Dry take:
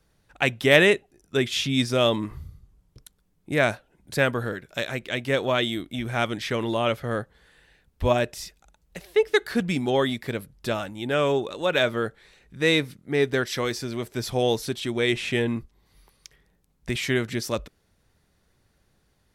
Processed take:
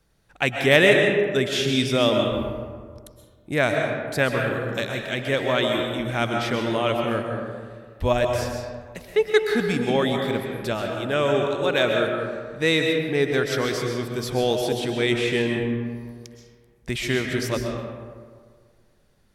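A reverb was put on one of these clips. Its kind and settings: algorithmic reverb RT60 1.8 s, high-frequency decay 0.45×, pre-delay 90 ms, DRR 2 dB

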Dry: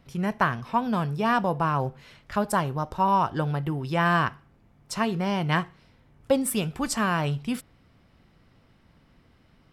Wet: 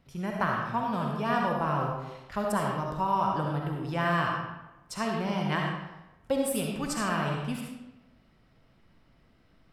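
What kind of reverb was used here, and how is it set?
algorithmic reverb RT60 0.98 s, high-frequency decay 0.75×, pre-delay 25 ms, DRR -0.5 dB; trim -6.5 dB

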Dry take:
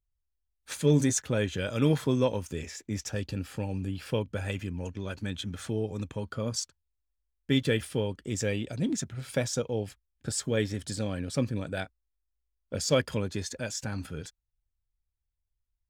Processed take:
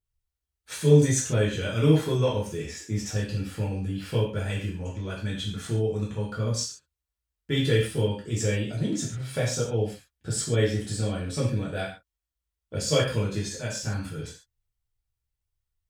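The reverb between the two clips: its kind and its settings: gated-style reverb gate 170 ms falling, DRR -5.5 dB; trim -4 dB

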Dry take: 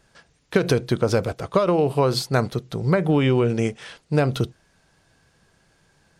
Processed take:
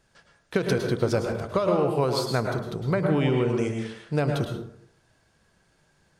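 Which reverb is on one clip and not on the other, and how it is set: plate-style reverb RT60 0.65 s, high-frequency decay 0.5×, pre-delay 95 ms, DRR 2.5 dB; trim -5.5 dB

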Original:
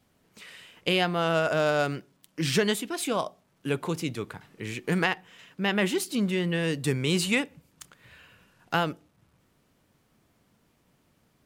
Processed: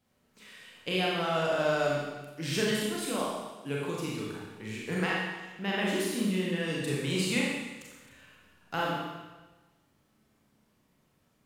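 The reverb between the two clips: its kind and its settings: Schroeder reverb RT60 1.2 s, combs from 29 ms, DRR -4.5 dB; trim -9 dB

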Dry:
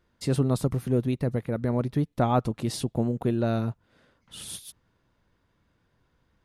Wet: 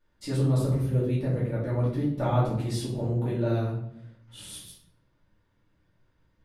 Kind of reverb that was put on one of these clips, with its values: simulated room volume 130 m³, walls mixed, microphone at 2.4 m; trim -11.5 dB

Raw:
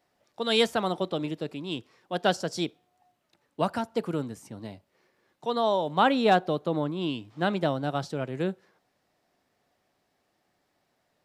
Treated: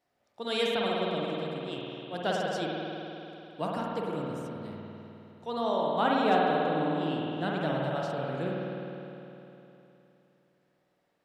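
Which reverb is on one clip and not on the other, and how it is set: spring tank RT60 3.2 s, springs 51 ms, chirp 60 ms, DRR -3.5 dB; trim -7.5 dB

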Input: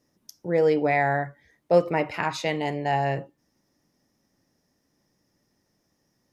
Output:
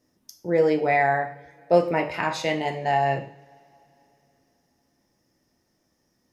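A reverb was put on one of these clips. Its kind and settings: two-slope reverb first 0.43 s, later 3.4 s, from -27 dB, DRR 4.5 dB

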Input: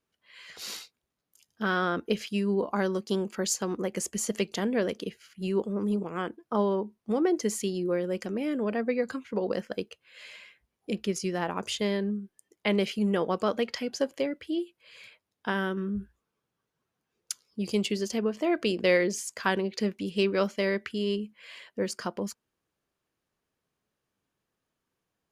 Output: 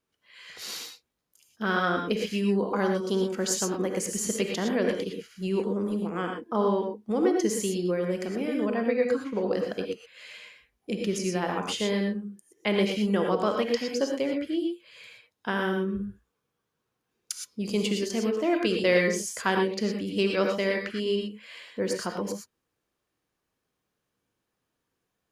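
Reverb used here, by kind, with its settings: gated-style reverb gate 140 ms rising, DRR 2 dB

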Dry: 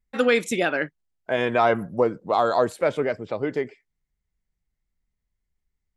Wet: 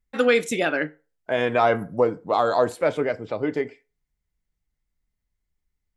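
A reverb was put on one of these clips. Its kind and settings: FDN reverb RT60 0.33 s, low-frequency decay 0.75×, high-frequency decay 0.7×, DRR 11.5 dB

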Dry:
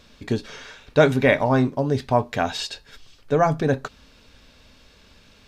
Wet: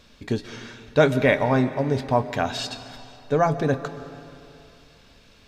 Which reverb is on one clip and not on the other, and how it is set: algorithmic reverb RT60 2.7 s, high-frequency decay 0.85×, pre-delay 90 ms, DRR 12.5 dB; trim -1.5 dB

